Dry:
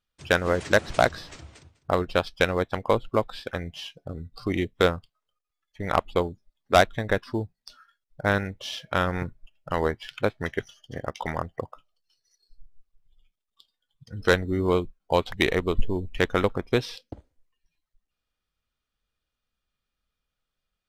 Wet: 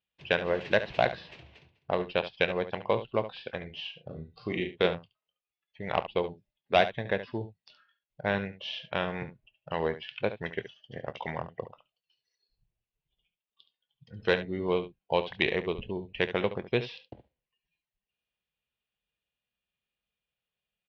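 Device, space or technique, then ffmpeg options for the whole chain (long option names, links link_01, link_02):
guitar cabinet: -filter_complex "[0:a]highpass=81,equalizer=frequency=87:width_type=q:width=4:gain=-9,equalizer=frequency=280:width_type=q:width=4:gain=-8,equalizer=frequency=1300:width_type=q:width=4:gain=-10,equalizer=frequency=2700:width_type=q:width=4:gain=7,lowpass=frequency=3900:width=0.5412,lowpass=frequency=3900:width=1.3066,asettb=1/sr,asplit=3[link_01][link_02][link_03];[link_01]atrim=end=3.624[link_04];[link_02]atrim=start=3.62:end=4.87,asetpts=PTS-STARTPTS,afade=type=in:duration=0.004:curve=qsin,afade=type=out:start_time=1.246:duration=0.004:curve=qsin,asplit=2[link_05][link_06];[link_06]adelay=38,volume=-6dB[link_07];[link_05][link_07]amix=inputs=2:normalize=0,atrim=end_sample=55125[link_08];[link_03]atrim=start=4.866[link_09];[link_04][link_08]acrossfade=duration=0.004:curve1=hsin:curve2=qsin[link_10];[link_10][link_09]acrossfade=duration=0.004:curve1=qsin:curve2=hsin,aecho=1:1:25|71:0.15|0.237,volume=-4dB"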